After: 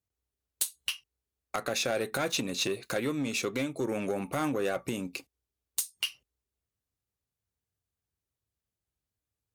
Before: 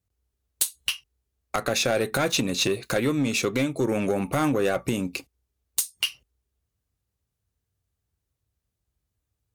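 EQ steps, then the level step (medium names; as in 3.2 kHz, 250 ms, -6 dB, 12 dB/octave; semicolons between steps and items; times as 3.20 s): bass shelf 110 Hz -9.5 dB; -6.0 dB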